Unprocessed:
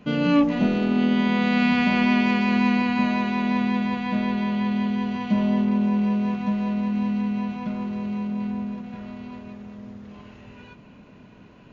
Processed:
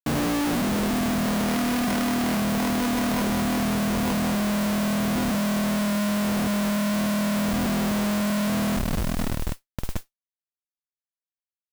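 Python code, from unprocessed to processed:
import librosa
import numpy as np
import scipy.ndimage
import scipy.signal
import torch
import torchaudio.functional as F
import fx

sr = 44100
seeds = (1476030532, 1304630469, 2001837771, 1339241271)

y = fx.lowpass(x, sr, hz=1400.0, slope=6)
y = np.repeat(scipy.signal.resample_poly(y, 1, 6), 6)[:len(y)]
y = fx.schmitt(y, sr, flips_db=-32.0)
y = fx.mod_noise(y, sr, seeds[0], snr_db=16)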